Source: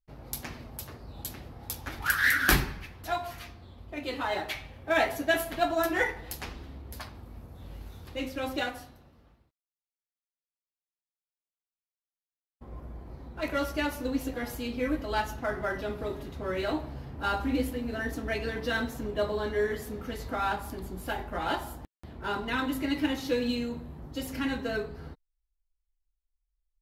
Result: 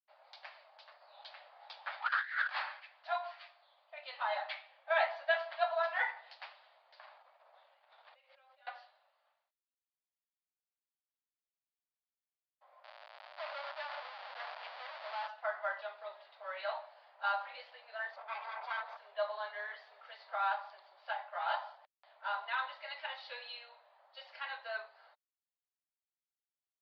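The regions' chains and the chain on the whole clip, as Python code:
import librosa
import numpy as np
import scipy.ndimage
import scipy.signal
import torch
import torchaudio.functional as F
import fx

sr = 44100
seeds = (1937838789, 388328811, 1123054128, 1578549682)

y = fx.chain(x, sr, fx.bandpass_edges(low_hz=290.0, high_hz=5300.0),
    fx.over_compress(threshold_db=-30.0, ratio=-0.5), at=(1.01, 2.8))
y = fx.chain(y, sr, fx.median_filter(points=9),
    fx.over_compress(threshold_db=-46.0, ratio=-1.0), at=(7.0, 8.67))
y = fx.chain(y, sr, fx.high_shelf(hz=2300.0, db=-7.0),
    fx.hum_notches(base_hz=60, count=9),
    fx.schmitt(flips_db=-45.5), at=(12.84, 15.28))
y = fx.chain(y, sr, fx.lower_of_two(delay_ms=0.84),
    fx.peak_eq(hz=4100.0, db=-12.0, octaves=2.1),
    fx.env_flatten(amount_pct=100), at=(18.16, 18.97))
y = scipy.signal.sosfilt(scipy.signal.cheby1(5, 1.0, [590.0, 4700.0], 'bandpass', fs=sr, output='sos'), y)
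y = fx.dynamic_eq(y, sr, hz=1100.0, q=1.1, threshold_db=-42.0, ratio=4.0, max_db=6)
y = F.gain(torch.from_numpy(y), -7.5).numpy()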